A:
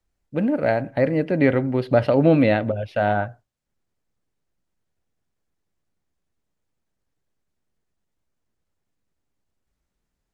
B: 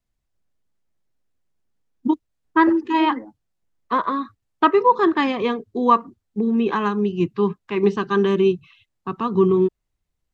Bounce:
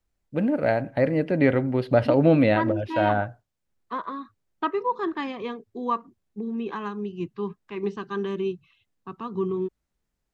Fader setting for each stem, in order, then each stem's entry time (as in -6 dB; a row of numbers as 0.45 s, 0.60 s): -2.0 dB, -10.5 dB; 0.00 s, 0.00 s